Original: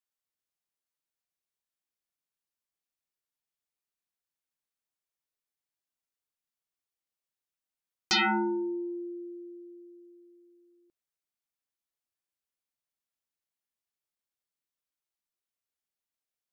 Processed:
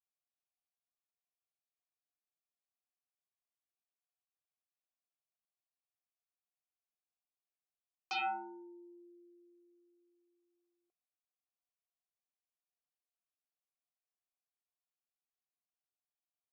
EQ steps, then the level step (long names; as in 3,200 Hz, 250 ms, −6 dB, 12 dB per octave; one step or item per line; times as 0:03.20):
formant filter a
high-pass filter 320 Hz 12 dB per octave
low-pass with resonance 6,300 Hz, resonance Q 1.6
+1.0 dB